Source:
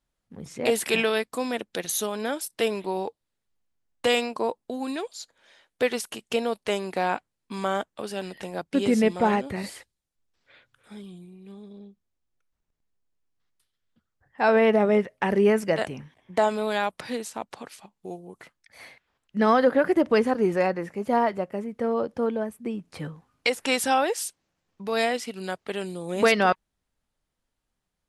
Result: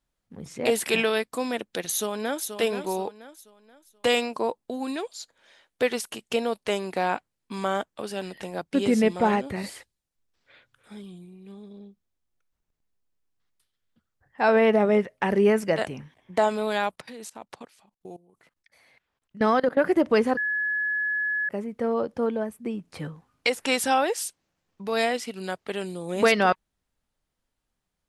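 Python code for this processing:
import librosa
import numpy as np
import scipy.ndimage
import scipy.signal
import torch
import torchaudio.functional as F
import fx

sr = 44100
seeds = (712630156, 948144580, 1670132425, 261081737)

y = fx.echo_throw(x, sr, start_s=1.9, length_s=0.57, ms=480, feedback_pct=35, wet_db=-8.5)
y = fx.level_steps(y, sr, step_db=20, at=(16.94, 19.78))
y = fx.edit(y, sr, fx.bleep(start_s=20.37, length_s=1.12, hz=1700.0, db=-23.5), tone=tone)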